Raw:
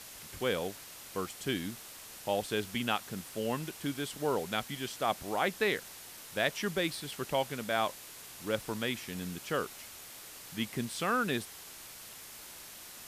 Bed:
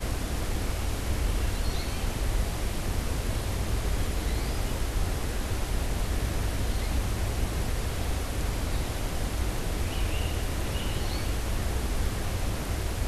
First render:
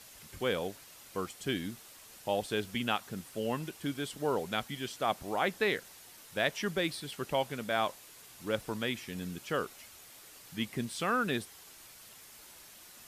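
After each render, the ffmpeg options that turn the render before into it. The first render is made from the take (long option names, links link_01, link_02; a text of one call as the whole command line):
ffmpeg -i in.wav -af "afftdn=noise_reduction=6:noise_floor=-49" out.wav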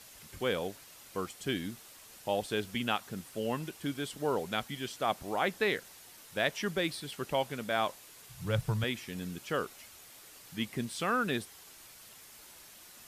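ffmpeg -i in.wav -filter_complex "[0:a]asettb=1/sr,asplit=3[link_01][link_02][link_03];[link_01]atrim=end=8.294[link_04];[link_02]atrim=start=8.29:end=8.84,asetpts=PTS-STARTPTS,afade=type=in:duration=0.004:curve=qsin,afade=type=out:start_time=0.546:duration=0.004:curve=qsin,lowshelf=frequency=190:width_type=q:width=3:gain=10.5[link_05];[link_03]atrim=start=8.836[link_06];[link_04][link_05]acrossfade=duration=0.004:curve1=hsin:curve2=qsin[link_07];[link_07][link_06]acrossfade=duration=0.004:curve1=qsin:curve2=hsin" out.wav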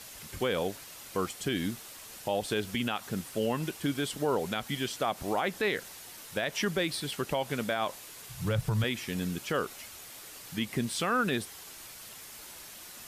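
ffmpeg -i in.wav -af "acontrast=63,alimiter=limit=-19.5dB:level=0:latency=1:release=91" out.wav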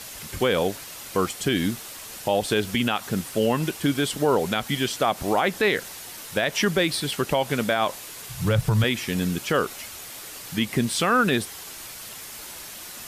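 ffmpeg -i in.wav -af "volume=8dB" out.wav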